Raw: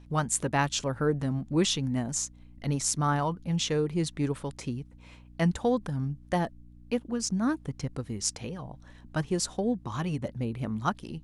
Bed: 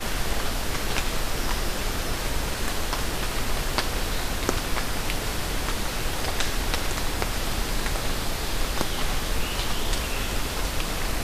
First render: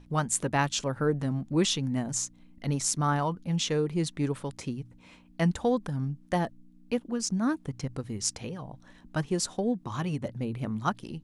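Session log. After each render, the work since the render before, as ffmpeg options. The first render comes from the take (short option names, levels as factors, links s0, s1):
-af "bandreject=f=60:t=h:w=4,bandreject=f=120:t=h:w=4"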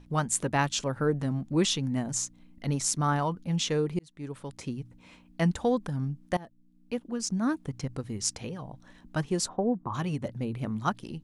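-filter_complex "[0:a]asplit=3[s0][s1][s2];[s0]afade=t=out:st=9.47:d=0.02[s3];[s1]lowpass=f=1100:t=q:w=2,afade=t=in:st=9.47:d=0.02,afade=t=out:st=9.93:d=0.02[s4];[s2]afade=t=in:st=9.93:d=0.02[s5];[s3][s4][s5]amix=inputs=3:normalize=0,asplit=3[s6][s7][s8];[s6]atrim=end=3.99,asetpts=PTS-STARTPTS,afade=t=out:st=3.986:d=0.004:c=hsin[s9];[s7]atrim=start=3.99:end=6.37,asetpts=PTS-STARTPTS,afade=t=in:d=0.78,afade=t=out:st=2.376:d=0.004:c=hsin:silence=0.0944061[s10];[s8]atrim=start=6.37,asetpts=PTS-STARTPTS,afade=t=in:d=1.35:c=qsin:silence=0.0944061[s11];[s9][s10][s11]concat=n=3:v=0:a=1"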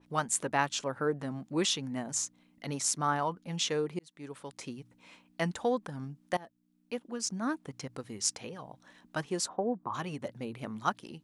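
-af "highpass=f=460:p=1,adynamicequalizer=threshold=0.00501:dfrequency=2300:dqfactor=0.7:tfrequency=2300:tqfactor=0.7:attack=5:release=100:ratio=0.375:range=3:mode=cutabove:tftype=highshelf"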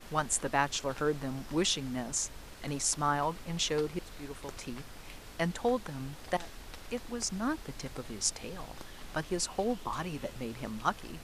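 -filter_complex "[1:a]volume=0.0891[s0];[0:a][s0]amix=inputs=2:normalize=0"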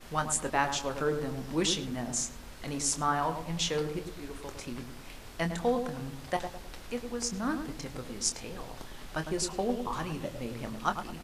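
-filter_complex "[0:a]asplit=2[s0][s1];[s1]adelay=25,volume=0.355[s2];[s0][s2]amix=inputs=2:normalize=0,asplit=2[s3][s4];[s4]adelay=105,lowpass=f=960:p=1,volume=0.501,asplit=2[s5][s6];[s6]adelay=105,lowpass=f=960:p=1,volume=0.46,asplit=2[s7][s8];[s8]adelay=105,lowpass=f=960:p=1,volume=0.46,asplit=2[s9][s10];[s10]adelay=105,lowpass=f=960:p=1,volume=0.46,asplit=2[s11][s12];[s12]adelay=105,lowpass=f=960:p=1,volume=0.46,asplit=2[s13][s14];[s14]adelay=105,lowpass=f=960:p=1,volume=0.46[s15];[s5][s7][s9][s11][s13][s15]amix=inputs=6:normalize=0[s16];[s3][s16]amix=inputs=2:normalize=0"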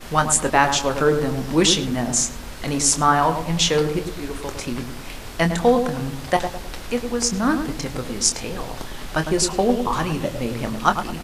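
-af "volume=3.98,alimiter=limit=0.891:level=0:latency=1"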